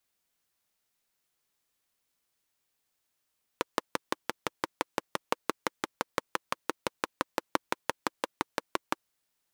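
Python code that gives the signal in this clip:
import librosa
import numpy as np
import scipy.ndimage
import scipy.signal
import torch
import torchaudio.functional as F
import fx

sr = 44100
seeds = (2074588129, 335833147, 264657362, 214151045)

y = fx.engine_single(sr, seeds[0], length_s=5.35, rpm=700, resonances_hz=(340.0, 500.0, 940.0))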